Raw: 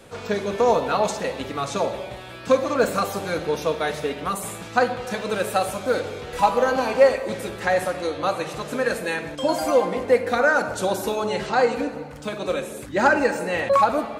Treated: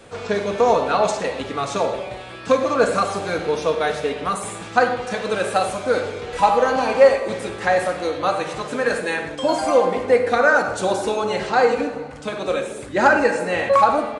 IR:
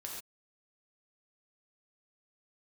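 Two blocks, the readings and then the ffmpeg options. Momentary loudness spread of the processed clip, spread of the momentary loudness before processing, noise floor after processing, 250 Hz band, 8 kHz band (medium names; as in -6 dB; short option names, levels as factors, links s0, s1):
10 LU, 10 LU, -35 dBFS, +1.5 dB, +1.0 dB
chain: -filter_complex "[0:a]asplit=2[s0][s1];[s1]bass=f=250:g=-8,treble=f=4000:g=-6[s2];[1:a]atrim=start_sample=2205,asetrate=52920,aresample=44100[s3];[s2][s3]afir=irnorm=-1:irlink=0,volume=1.19[s4];[s0][s4]amix=inputs=2:normalize=0,aresample=22050,aresample=44100,volume=0.891"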